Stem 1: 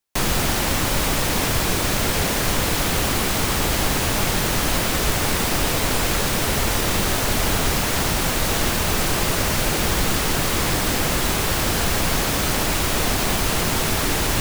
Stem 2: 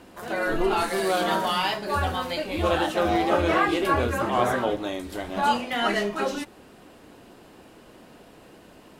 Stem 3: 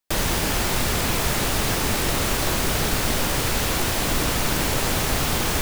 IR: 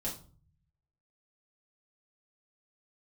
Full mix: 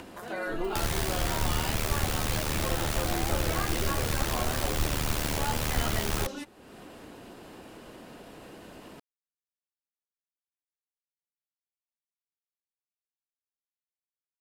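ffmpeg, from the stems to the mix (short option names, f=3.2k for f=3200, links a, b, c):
-filter_complex "[1:a]volume=-6.5dB[a];[2:a]acompressor=mode=upward:threshold=-30dB:ratio=2.5,tremolo=f=76:d=0.947,adelay=650,volume=0dB[b];[a][b]amix=inputs=2:normalize=0,acompressor=mode=upward:threshold=-37dB:ratio=2.5,acrossover=split=130[c][d];[d]acompressor=threshold=-29dB:ratio=3[e];[c][e]amix=inputs=2:normalize=0"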